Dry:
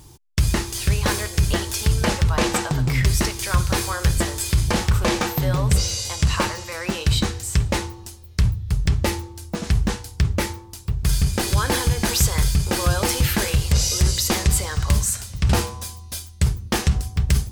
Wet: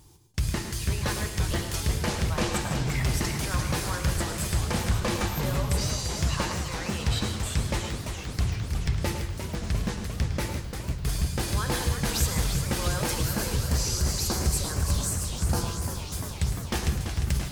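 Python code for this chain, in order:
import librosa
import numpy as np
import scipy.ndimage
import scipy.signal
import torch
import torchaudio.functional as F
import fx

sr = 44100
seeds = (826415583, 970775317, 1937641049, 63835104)

p1 = fx.rev_gated(x, sr, seeds[0], gate_ms=180, shape='rising', drr_db=9.0)
p2 = fx.spec_box(p1, sr, start_s=13.15, length_s=2.83, low_hz=1700.0, high_hz=4000.0, gain_db=-9)
p3 = p2 + fx.echo_single(p2, sr, ms=107, db=-11.0, dry=0)
p4 = fx.echo_warbled(p3, sr, ms=344, feedback_pct=78, rate_hz=2.8, cents=202, wet_db=-8.0)
y = p4 * librosa.db_to_amplitude(-8.5)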